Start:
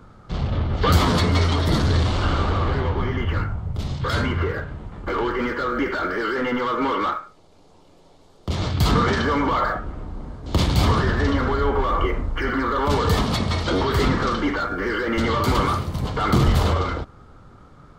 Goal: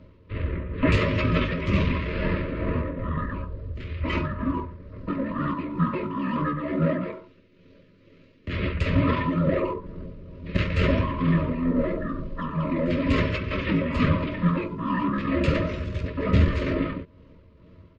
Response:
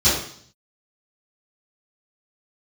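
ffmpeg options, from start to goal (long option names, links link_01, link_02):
-af "lowpass=7300,lowshelf=frequency=67:gain=-11.5,aecho=1:1:6.6:0.71,tremolo=f=2.2:d=0.44,asuperstop=centerf=1300:order=12:qfactor=2.6,asetrate=26222,aresample=44100,atempo=1.68179"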